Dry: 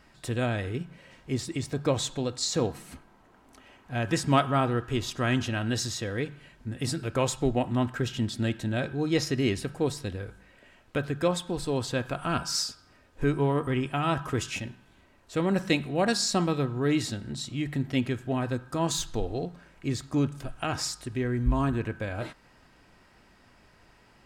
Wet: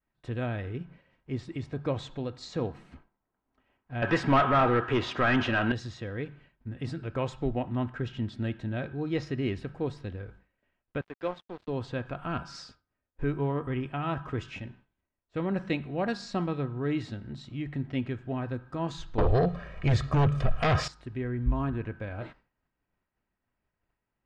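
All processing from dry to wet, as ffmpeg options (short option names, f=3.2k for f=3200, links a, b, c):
-filter_complex "[0:a]asettb=1/sr,asplit=3[a][b][c];[a]atrim=end=4.024[d];[b]atrim=start=4.02:end=5.72,asetpts=PTS-STARTPTS,afade=t=in:d=0.004:c=qsin,afade=t=out:st=1.696:d=0.004:c=qsin,highpass=50,asplit=2[e][f];[f]highpass=f=720:p=1,volume=24dB,asoftclip=type=tanh:threshold=-8.5dB[g];[e][g]amix=inputs=2:normalize=0,lowpass=f=2.7k:p=1,volume=-6dB[h];[c]atrim=start=5.716[i];[d][h]acrossfade=d=0.004:c1=hsin:c2=qsin[j];[j][i]acrossfade=d=0.004:c1=qsin:c2=hsin,asettb=1/sr,asplit=3[k][l][m];[k]atrim=end=11.014[n];[l]atrim=start=11.01:end=11.68,asetpts=PTS-STARTPTS,afade=t=in:d=0.004:c=qsin,afade=t=out:st=0.666:d=0.004:c=qsin,highpass=310,acrossover=split=5200[o][p];[p]acompressor=threshold=-57dB:ratio=4:attack=1:release=60[q];[o][q]amix=inputs=2:normalize=0,aeval=exprs='sgn(val(0))*max(abs(val(0))-0.0112,0)':c=same[r];[m]atrim=start=11.676[s];[n][r]acrossfade=d=0.004:c1=hsin:c2=qsin[t];[t][s]acrossfade=d=0.004:c1=qsin:c2=hsin,asettb=1/sr,asplit=3[u][v][w];[u]atrim=end=19.184[x];[v]atrim=start=19.18:end=20.88,asetpts=PTS-STARTPTS,afade=t=in:d=0.004:c=qsin,afade=t=out:st=1.696:d=0.004:c=qsin,aecho=1:1:1.7:0.76,atrim=end_sample=74970,aeval=exprs='0.178*sin(PI/2*3.16*val(0)/0.178)':c=same[y];[w]atrim=start=20.876[z];[x][y]acrossfade=d=0.004:c1=hsin:c2=qsin[aa];[aa][z]acrossfade=d=0.004:c1=qsin:c2=hsin,lowpass=2.8k,agate=range=-33dB:threshold=-45dB:ratio=3:detection=peak,lowshelf=f=120:g=4.5,volume=-5dB"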